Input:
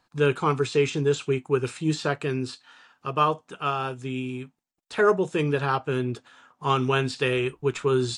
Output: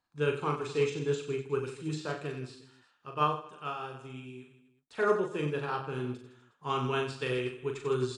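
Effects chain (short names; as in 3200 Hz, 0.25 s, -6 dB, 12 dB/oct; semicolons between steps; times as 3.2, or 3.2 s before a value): reverse bouncing-ball echo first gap 40 ms, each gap 1.3×, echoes 5; upward expander 1.5:1, over -31 dBFS; gain -7 dB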